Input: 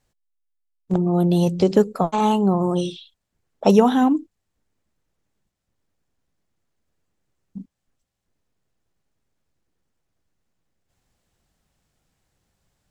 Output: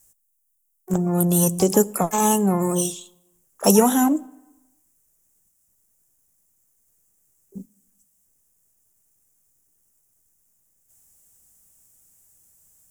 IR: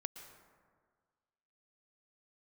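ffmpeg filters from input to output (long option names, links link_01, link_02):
-filter_complex "[0:a]asplit=2[link_01][link_02];[link_02]asetrate=88200,aresample=44100,atempo=0.5,volume=-17dB[link_03];[link_01][link_03]amix=inputs=2:normalize=0,aexciter=amount=12.2:drive=7.4:freq=6300,asplit=2[link_04][link_05];[1:a]atrim=start_sample=2205,asetrate=70560,aresample=44100[link_06];[link_05][link_06]afir=irnorm=-1:irlink=0,volume=-10dB[link_07];[link_04][link_07]amix=inputs=2:normalize=0,volume=-2.5dB"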